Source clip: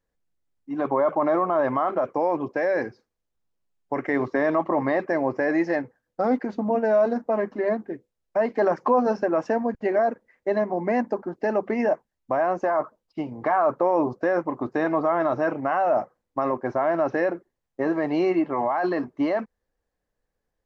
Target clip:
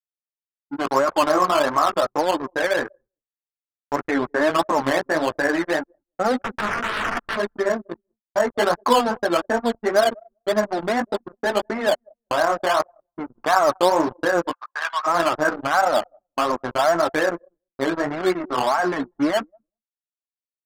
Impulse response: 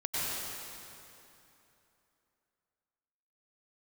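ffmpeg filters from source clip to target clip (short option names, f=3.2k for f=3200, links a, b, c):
-filter_complex "[0:a]acontrast=36,asplit=3[a][b][c];[a]afade=t=out:st=6.42:d=0.02[d];[b]aeval=exprs='(mod(7.5*val(0)+1,2)-1)/7.5':c=same,afade=t=in:st=6.42:d=0.02,afade=t=out:st=7.35:d=0.02[e];[c]afade=t=in:st=7.35:d=0.02[f];[d][e][f]amix=inputs=3:normalize=0,flanger=delay=9.3:depth=8.4:regen=6:speed=1.7:shape=triangular,acrusher=samples=9:mix=1:aa=0.000001:lfo=1:lforange=5.4:lforate=2.7,asettb=1/sr,asplit=3[g][h][i];[g]atrim=end=4.004[j];[h]atrim=start=4:end=4.5,asetpts=PTS-STARTPTS,afade=t=in:d=0.004:c=qsin,afade=t=out:st=0.496:d=0.004:c=qsin,highshelf=f=3.4k:g=-10[k];[i]atrim=start=4.496[l];[j][k]acrossfade=d=0.004:c1=hsin:c2=qsin[m];[m][l]acrossfade=d=0.004:c1=qsin:c2=hsin,aeval=exprs='sgn(val(0))*max(abs(val(0))-0.0211,0)':c=same,asplit=2[n][o];[o]adelay=191,lowpass=f=2.2k:p=1,volume=-22.5dB,asplit=2[p][q];[q]adelay=191,lowpass=f=2.2k:p=1,volume=0.3[r];[n][p][r]amix=inputs=3:normalize=0,agate=range=-33dB:threshold=-48dB:ratio=3:detection=peak,asplit=3[s][t][u];[s]afade=t=out:st=14.51:d=0.02[v];[t]highpass=f=970:w=0.5412,highpass=f=970:w=1.3066,afade=t=in:st=14.51:d=0.02,afade=t=out:st=15.06:d=0.02[w];[u]afade=t=in:st=15.06:d=0.02[x];[v][w][x]amix=inputs=3:normalize=0,adynamicsmooth=sensitivity=3:basefreq=3.1k,equalizer=f=1.4k:w=1.4:g=10,anlmdn=25.1"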